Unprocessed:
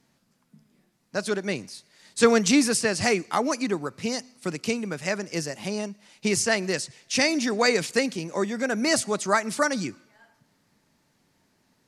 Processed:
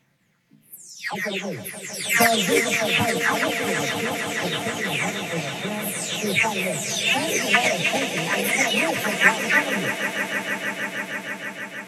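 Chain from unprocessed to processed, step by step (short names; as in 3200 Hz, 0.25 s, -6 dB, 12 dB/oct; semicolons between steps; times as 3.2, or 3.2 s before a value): spectral delay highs early, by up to 0.522 s; on a send: swelling echo 0.158 s, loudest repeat 5, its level -13.5 dB; on the sum: formant shift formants +5 st; ten-band EQ 125 Hz +10 dB, 2000 Hz +11 dB, 4000 Hz +4 dB; gain -1 dB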